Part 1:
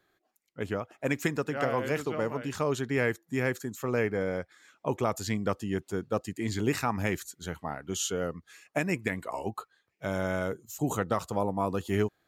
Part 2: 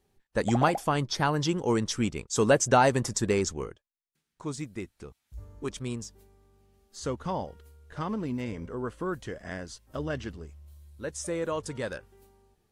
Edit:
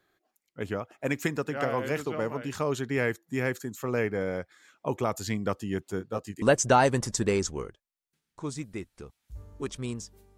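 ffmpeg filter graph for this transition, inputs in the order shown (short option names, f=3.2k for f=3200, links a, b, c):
-filter_complex "[0:a]asplit=3[a][b][c];[a]afade=t=out:st=5.98:d=0.02[d];[b]flanger=delay=17:depth=4.6:speed=2.1,afade=t=in:st=5.98:d=0.02,afade=t=out:st=6.42:d=0.02[e];[c]afade=t=in:st=6.42:d=0.02[f];[d][e][f]amix=inputs=3:normalize=0,apad=whole_dur=10.37,atrim=end=10.37,atrim=end=6.422[g];[1:a]atrim=start=2.438:end=6.39[h];[g][h]acrossfade=d=0.004:c1=hsin:c2=hsin"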